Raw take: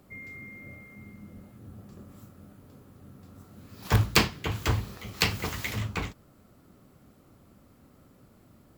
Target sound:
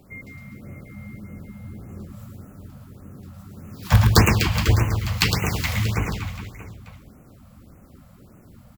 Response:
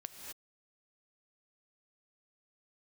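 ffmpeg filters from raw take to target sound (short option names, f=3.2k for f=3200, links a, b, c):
-filter_complex "[0:a]aecho=1:1:110|247.5|419.4|634.2|902.8:0.631|0.398|0.251|0.158|0.1,asplit=2[a][b];[1:a]atrim=start_sample=2205,asetrate=83790,aresample=44100,lowshelf=f=230:g=12[c];[b][c]afir=irnorm=-1:irlink=0,volume=1dB[d];[a][d]amix=inputs=2:normalize=0,afftfilt=real='re*(1-between(b*sr/1024,310*pow(4300/310,0.5+0.5*sin(2*PI*1.7*pts/sr))/1.41,310*pow(4300/310,0.5+0.5*sin(2*PI*1.7*pts/sr))*1.41))':imag='im*(1-between(b*sr/1024,310*pow(4300/310,0.5+0.5*sin(2*PI*1.7*pts/sr))/1.41,310*pow(4300/310,0.5+0.5*sin(2*PI*1.7*pts/sr))*1.41))':win_size=1024:overlap=0.75,volume=2dB"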